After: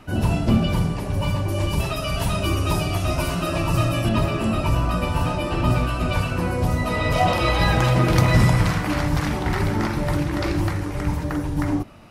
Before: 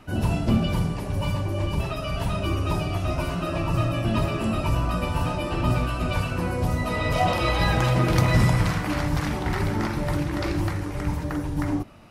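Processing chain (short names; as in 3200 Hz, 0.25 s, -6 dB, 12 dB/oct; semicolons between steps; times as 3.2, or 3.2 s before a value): 1.48–4.09 high shelf 4300 Hz +9.5 dB; gain +3 dB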